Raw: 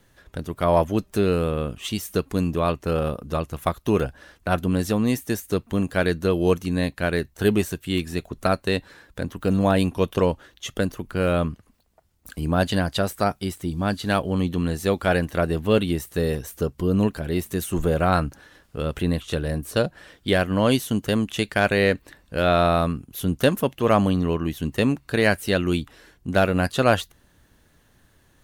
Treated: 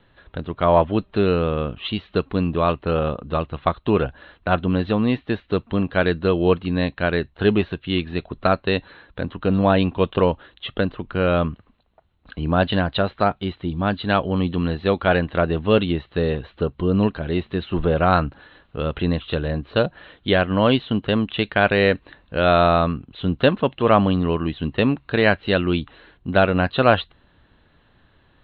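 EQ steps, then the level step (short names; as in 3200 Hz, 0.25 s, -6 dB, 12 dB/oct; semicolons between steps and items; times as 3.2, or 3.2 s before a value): rippled Chebyshev low-pass 4100 Hz, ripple 3 dB; +4.5 dB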